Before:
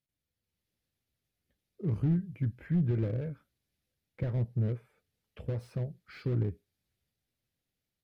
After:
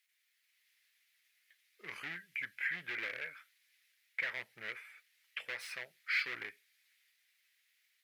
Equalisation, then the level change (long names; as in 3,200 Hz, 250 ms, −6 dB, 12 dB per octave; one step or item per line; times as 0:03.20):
high-pass with resonance 2,000 Hz, resonance Q 3.3
+11.0 dB